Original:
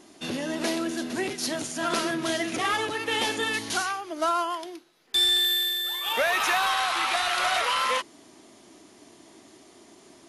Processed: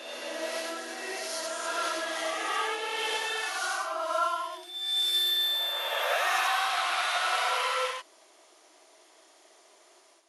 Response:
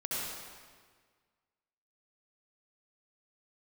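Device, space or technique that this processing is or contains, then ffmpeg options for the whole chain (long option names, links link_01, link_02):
ghost voice: -filter_complex "[0:a]areverse[link_01];[1:a]atrim=start_sample=2205[link_02];[link_01][link_02]afir=irnorm=-1:irlink=0,areverse,highpass=frequency=470:width=0.5412,highpass=frequency=470:width=1.3066,volume=-7.5dB"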